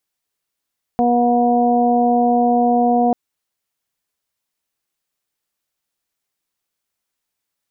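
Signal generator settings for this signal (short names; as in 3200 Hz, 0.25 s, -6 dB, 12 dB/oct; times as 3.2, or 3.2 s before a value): steady additive tone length 2.14 s, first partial 241 Hz, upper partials -4/1/-16.5 dB, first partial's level -16 dB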